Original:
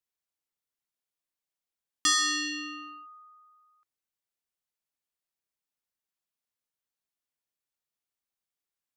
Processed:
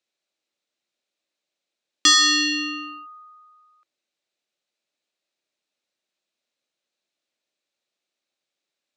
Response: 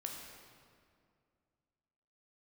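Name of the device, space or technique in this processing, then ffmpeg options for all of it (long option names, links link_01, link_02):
television speaker: -af "highpass=190,equalizer=frequency=230:width_type=q:width=4:gain=3,equalizer=frequency=340:width_type=q:width=4:gain=6,equalizer=frequency=580:width_type=q:width=4:gain=9,equalizer=frequency=1000:width_type=q:width=4:gain=-4,equalizer=frequency=2500:width_type=q:width=4:gain=5,equalizer=frequency=3900:width_type=q:width=4:gain=7,lowpass=frequency=7600:width=0.5412,lowpass=frequency=7600:width=1.3066,volume=7.5dB"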